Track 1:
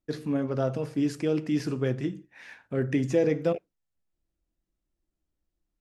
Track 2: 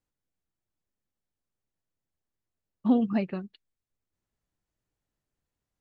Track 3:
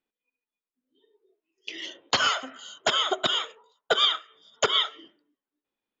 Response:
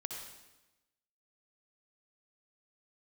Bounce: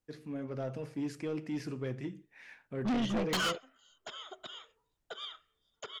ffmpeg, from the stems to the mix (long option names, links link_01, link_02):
-filter_complex "[0:a]equalizer=frequency=2200:width=2.3:gain=4.5,dynaudnorm=framelen=260:gausssize=3:maxgain=5dB,volume=-13.5dB[link_01];[1:a]aeval=exprs='0.211*(cos(1*acos(clip(val(0)/0.211,-1,1)))-cos(1*PI/2))+0.0266*(cos(6*acos(clip(val(0)/0.211,-1,1)))-cos(6*PI/2))':channel_layout=same,volume=0dB,asplit=2[link_02][link_03];[2:a]adelay=1200,volume=-2.5dB[link_04];[link_03]apad=whole_len=317541[link_05];[link_04][link_05]sidechaingate=range=-19dB:threshold=-42dB:ratio=16:detection=peak[link_06];[link_01][link_02][link_06]amix=inputs=3:normalize=0,asoftclip=type=tanh:threshold=-27.5dB"